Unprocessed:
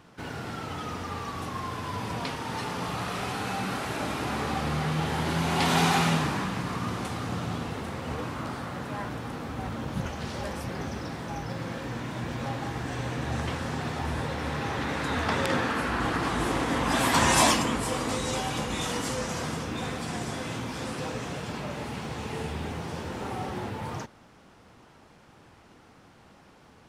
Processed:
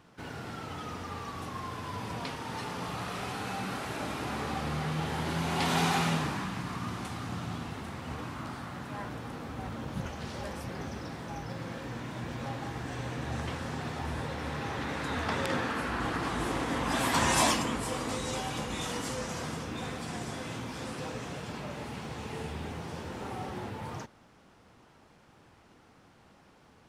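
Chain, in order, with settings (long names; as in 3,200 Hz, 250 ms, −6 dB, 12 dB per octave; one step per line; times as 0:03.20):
0:06.33–0:08.95: parametric band 490 Hz −6 dB 0.57 octaves
level −4.5 dB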